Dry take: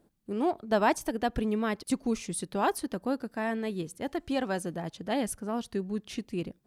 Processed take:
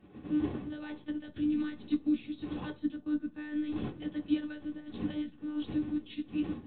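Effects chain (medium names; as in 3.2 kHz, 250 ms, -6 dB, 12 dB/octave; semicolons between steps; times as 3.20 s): wind noise 430 Hz -34 dBFS; high-order bell 960 Hz -9.5 dB 2.9 oct; peak limiter -26.5 dBFS, peak gain reduction 14 dB; monotone LPC vocoder at 8 kHz 300 Hz; reverberation RT60 0.35 s, pre-delay 3 ms, DRR 2.5 dB; upward expansion 1.5:1, over -52 dBFS; trim +5.5 dB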